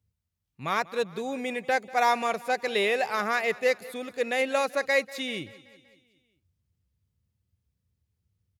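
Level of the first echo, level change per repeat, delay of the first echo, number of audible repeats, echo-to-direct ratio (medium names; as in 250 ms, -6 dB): -20.0 dB, -5.0 dB, 191 ms, 4, -18.5 dB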